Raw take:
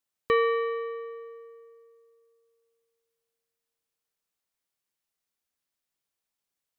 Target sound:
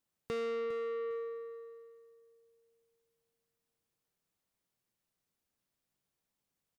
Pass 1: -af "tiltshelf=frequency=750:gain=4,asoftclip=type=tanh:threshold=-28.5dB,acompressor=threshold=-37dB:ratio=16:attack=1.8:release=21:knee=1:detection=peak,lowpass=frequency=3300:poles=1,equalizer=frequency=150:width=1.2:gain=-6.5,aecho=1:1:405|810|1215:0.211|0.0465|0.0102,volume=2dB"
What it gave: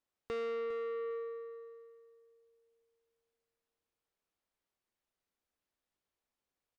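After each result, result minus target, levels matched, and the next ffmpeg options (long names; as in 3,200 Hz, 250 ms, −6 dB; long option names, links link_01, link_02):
125 Hz band −6.5 dB; 4,000 Hz band −2.0 dB
-af "tiltshelf=frequency=750:gain=4,asoftclip=type=tanh:threshold=-28.5dB,acompressor=threshold=-37dB:ratio=16:attack=1.8:release=21:knee=1:detection=peak,lowpass=frequency=3300:poles=1,equalizer=frequency=150:width=1.2:gain=5,aecho=1:1:405|810|1215:0.211|0.0465|0.0102,volume=2dB"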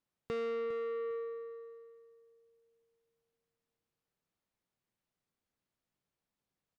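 4,000 Hz band −3.0 dB
-af "tiltshelf=frequency=750:gain=4,asoftclip=type=tanh:threshold=-28.5dB,acompressor=threshold=-37dB:ratio=16:attack=1.8:release=21:knee=1:detection=peak,equalizer=frequency=150:width=1.2:gain=5,aecho=1:1:405|810|1215:0.211|0.0465|0.0102,volume=2dB"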